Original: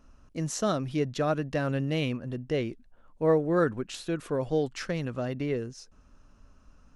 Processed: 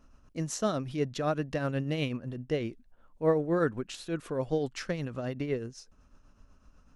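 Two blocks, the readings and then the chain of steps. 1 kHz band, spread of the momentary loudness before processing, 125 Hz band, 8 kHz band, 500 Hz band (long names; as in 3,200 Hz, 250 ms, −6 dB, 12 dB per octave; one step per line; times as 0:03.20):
−2.5 dB, 10 LU, −2.5 dB, −2.0 dB, −2.5 dB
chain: shaped tremolo triangle 8 Hz, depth 55%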